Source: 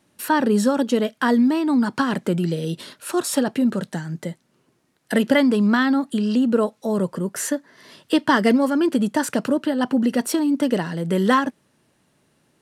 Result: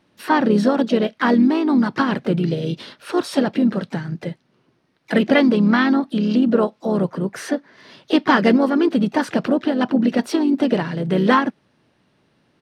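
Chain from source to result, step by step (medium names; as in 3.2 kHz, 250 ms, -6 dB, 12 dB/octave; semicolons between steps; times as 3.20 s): Savitzky-Golay filter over 15 samples; harmony voices -3 st -10 dB, +3 st -15 dB, +5 st -17 dB; trim +1.5 dB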